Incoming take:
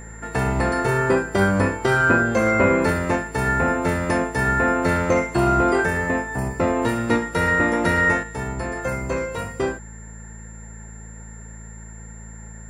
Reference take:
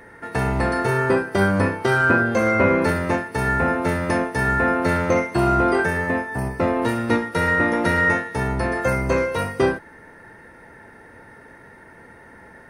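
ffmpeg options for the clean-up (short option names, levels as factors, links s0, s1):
-af "bandreject=f=55:t=h:w=4,bandreject=f=110:t=h:w=4,bandreject=f=165:t=h:w=4,bandreject=f=220:t=h:w=4,bandreject=f=7300:w=30,asetnsamples=n=441:p=0,asendcmd='8.23 volume volume 5dB',volume=1"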